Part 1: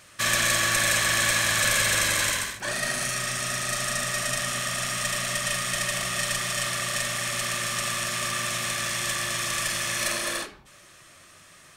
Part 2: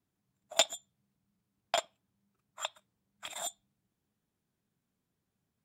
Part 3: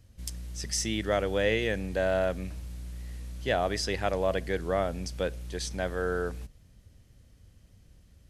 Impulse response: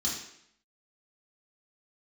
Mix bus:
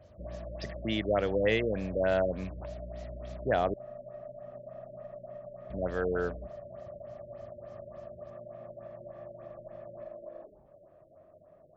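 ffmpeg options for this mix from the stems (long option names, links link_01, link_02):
-filter_complex "[0:a]lowpass=frequency=630:width_type=q:width=7.2,volume=-8.5dB[link_01];[1:a]lowpass=frequency=4700:width=0.5412,lowpass=frequency=4700:width=1.3066,alimiter=limit=-20dB:level=0:latency=1:release=175,volume=-8dB[link_02];[2:a]highpass=72,volume=0dB,asplit=3[link_03][link_04][link_05];[link_03]atrim=end=3.74,asetpts=PTS-STARTPTS,afade=type=out:start_time=3.736:duration=0.004:curve=hsin[link_06];[link_04]atrim=start=3.74:end=5.7,asetpts=PTS-STARTPTS,volume=0[link_07];[link_05]atrim=start=5.7,asetpts=PTS-STARTPTS,afade=type=in:duration=0.004:curve=hsin[link_08];[link_06][link_07][link_08]concat=n=3:v=0:a=1[link_09];[link_01][link_02]amix=inputs=2:normalize=0,lowshelf=frequency=420:gain=2.5,acompressor=threshold=-43dB:ratio=5,volume=0dB[link_10];[link_09][link_10]amix=inputs=2:normalize=0,afftfilt=real='re*lt(b*sr/1024,580*pow(7800/580,0.5+0.5*sin(2*PI*3.4*pts/sr)))':imag='im*lt(b*sr/1024,580*pow(7800/580,0.5+0.5*sin(2*PI*3.4*pts/sr)))':win_size=1024:overlap=0.75"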